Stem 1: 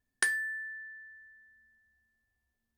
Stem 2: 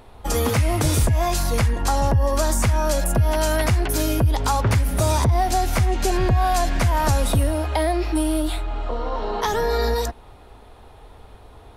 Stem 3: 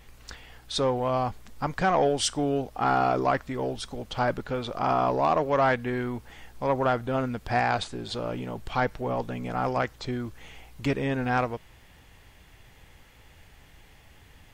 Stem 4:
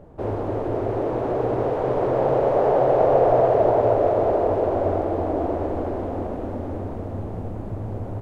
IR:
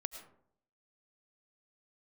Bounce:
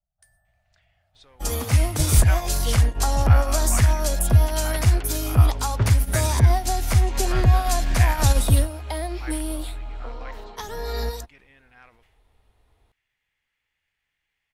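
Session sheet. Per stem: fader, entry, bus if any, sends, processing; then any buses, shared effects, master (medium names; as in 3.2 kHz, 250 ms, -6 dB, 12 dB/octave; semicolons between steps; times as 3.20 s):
-19.5 dB, 0.00 s, send -5.5 dB, treble shelf 4.6 kHz +10.5 dB
+1.5 dB, 1.15 s, no send, bass shelf 110 Hz +7 dB
-11.5 dB, 0.45 s, muted 5.59–6.13 s, no send, peaking EQ 2.1 kHz +15 dB 1.9 oct; decay stretcher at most 90 dB/s
-17.0 dB, 0.00 s, no send, octave divider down 2 oct, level +3 dB; elliptic band-stop 190–660 Hz; static phaser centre 1.5 kHz, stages 8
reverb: on, RT60 0.65 s, pre-delay 65 ms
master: treble shelf 3.3 kHz +8 dB; upward expansion 2.5:1, over -24 dBFS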